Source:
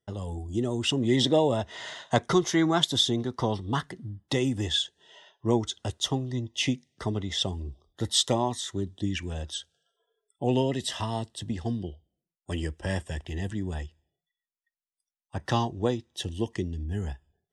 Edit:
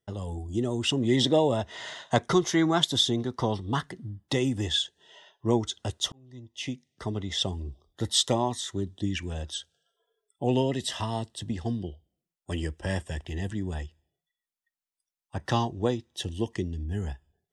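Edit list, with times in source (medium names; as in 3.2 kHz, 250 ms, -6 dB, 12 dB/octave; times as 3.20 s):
6.12–7.39 s: fade in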